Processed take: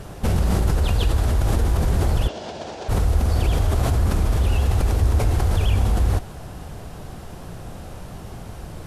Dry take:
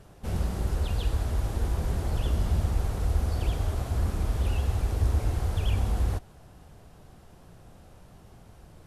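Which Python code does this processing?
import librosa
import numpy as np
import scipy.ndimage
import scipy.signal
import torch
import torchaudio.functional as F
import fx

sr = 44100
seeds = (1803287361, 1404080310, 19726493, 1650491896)

p1 = fx.over_compress(x, sr, threshold_db=-33.0, ratio=-1.0)
p2 = x + F.gain(torch.from_numpy(p1), 1.5).numpy()
p3 = fx.cabinet(p2, sr, low_hz=400.0, low_slope=12, high_hz=6200.0, hz=(640.0, 1200.0, 2000.0), db=(4, -10, -5), at=(2.27, 2.88), fade=0.02)
y = F.gain(torch.from_numpy(p3), 4.5).numpy()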